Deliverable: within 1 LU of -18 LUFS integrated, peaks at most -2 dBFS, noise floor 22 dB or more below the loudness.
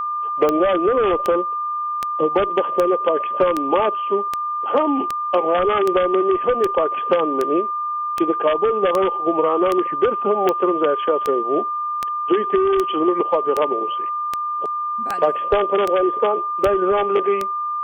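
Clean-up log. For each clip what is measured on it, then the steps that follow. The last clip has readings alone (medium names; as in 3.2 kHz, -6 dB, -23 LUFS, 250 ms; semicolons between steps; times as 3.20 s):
clicks found 23; steady tone 1.2 kHz; tone level -21 dBFS; loudness -19.5 LUFS; peak level -3.5 dBFS; loudness target -18.0 LUFS
-> de-click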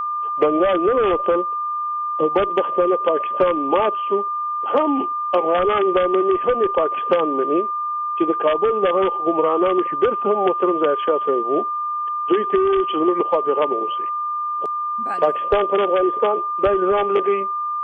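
clicks found 0; steady tone 1.2 kHz; tone level -21 dBFS
-> band-stop 1.2 kHz, Q 30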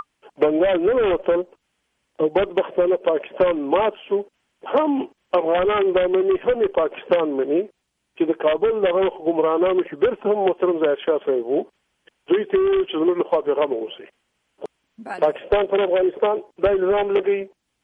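steady tone not found; loudness -20.5 LUFS; peak level -6.0 dBFS; loudness target -18.0 LUFS
-> trim +2.5 dB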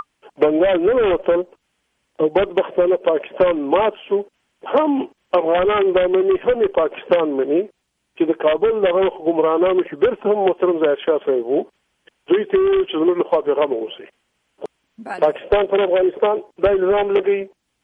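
loudness -18.0 LUFS; peak level -3.5 dBFS; noise floor -72 dBFS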